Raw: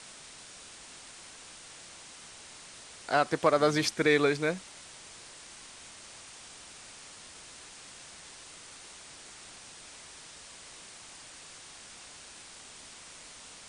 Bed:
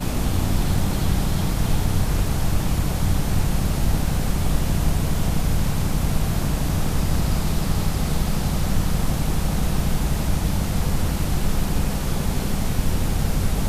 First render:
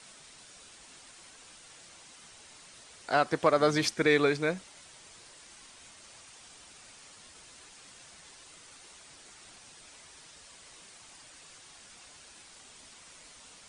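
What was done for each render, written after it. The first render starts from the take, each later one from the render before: noise reduction 6 dB, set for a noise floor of -50 dBFS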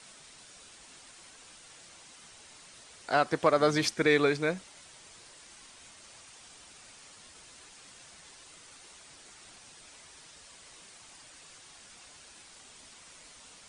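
no audible change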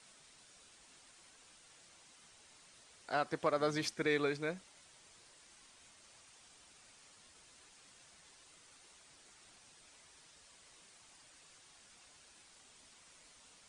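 trim -9 dB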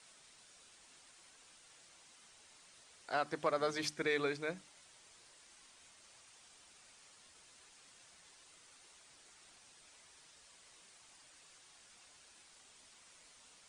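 bass shelf 460 Hz -3 dB; hum notches 50/100/150/200/250/300 Hz

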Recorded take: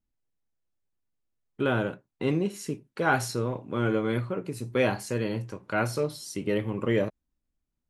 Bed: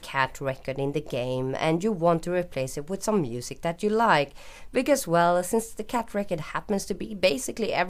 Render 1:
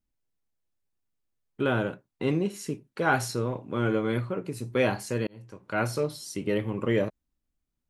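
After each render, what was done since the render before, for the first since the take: 5.27–5.84 s: fade in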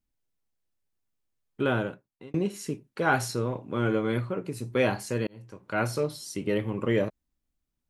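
1.72–2.34 s: fade out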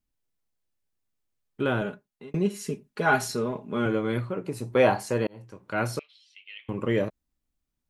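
1.81–3.86 s: comb 4.8 ms; 4.47–5.45 s: peaking EQ 780 Hz +8.5 dB 1.5 oct; 5.99–6.69 s: Butterworth band-pass 2.8 kHz, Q 2.5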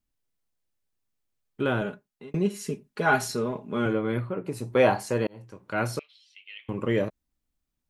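3.93–4.47 s: peaking EQ 6.2 kHz -14 dB 1 oct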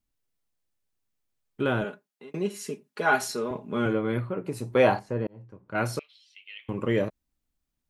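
1.84–3.51 s: Bessel high-pass 290 Hz; 4.99–5.75 s: FFT filter 120 Hz 0 dB, 1.6 kHz -8 dB, 9.8 kHz -24 dB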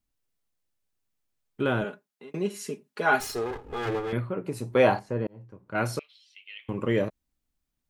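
3.20–4.13 s: comb filter that takes the minimum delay 2.4 ms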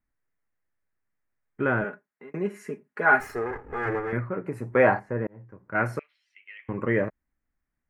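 resonant high shelf 2.6 kHz -11.5 dB, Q 3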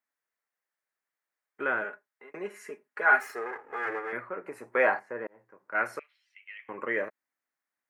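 high-pass 570 Hz 12 dB/octave; dynamic bell 810 Hz, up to -4 dB, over -37 dBFS, Q 1.2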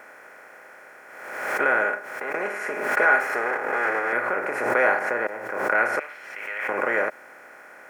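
spectral levelling over time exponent 0.4; swell ahead of each attack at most 45 dB/s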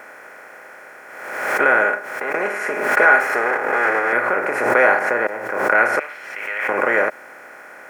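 trim +6 dB; peak limiter -2 dBFS, peak gain reduction 1 dB

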